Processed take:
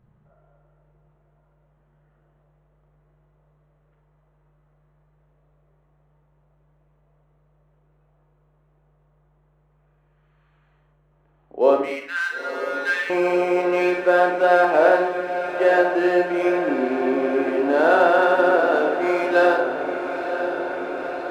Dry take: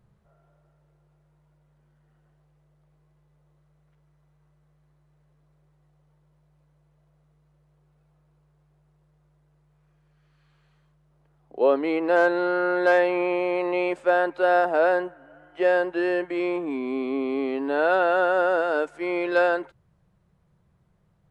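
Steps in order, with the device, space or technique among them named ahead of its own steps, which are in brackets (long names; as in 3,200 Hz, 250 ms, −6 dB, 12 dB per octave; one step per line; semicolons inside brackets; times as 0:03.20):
adaptive Wiener filter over 9 samples
0:11.81–0:13.10: Butterworth high-pass 1,400 Hz 36 dB per octave
bathroom (convolution reverb RT60 0.60 s, pre-delay 26 ms, DRR 1.5 dB)
feedback delay with all-pass diffusion 963 ms, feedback 76%, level −10 dB
level +2.5 dB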